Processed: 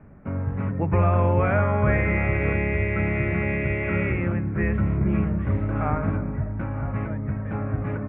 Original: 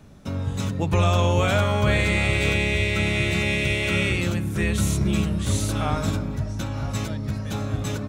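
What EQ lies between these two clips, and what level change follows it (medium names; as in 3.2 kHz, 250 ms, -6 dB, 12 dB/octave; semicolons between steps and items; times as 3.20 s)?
steep low-pass 2.2 kHz 48 dB/octave; 0.0 dB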